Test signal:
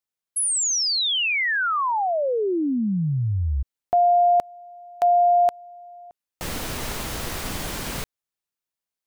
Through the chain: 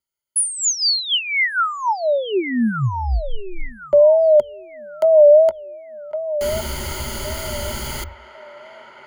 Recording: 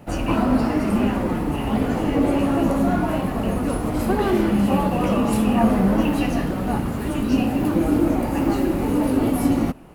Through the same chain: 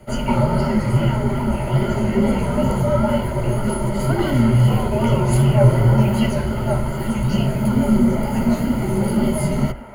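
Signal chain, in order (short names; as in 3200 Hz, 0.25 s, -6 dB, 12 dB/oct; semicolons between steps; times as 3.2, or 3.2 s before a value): on a send: band-limited delay 1.11 s, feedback 32%, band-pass 1200 Hz, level -9 dB; on the sum: wow and flutter 82 cents; ripple EQ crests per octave 1.8, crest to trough 14 dB; frequency shift -86 Hz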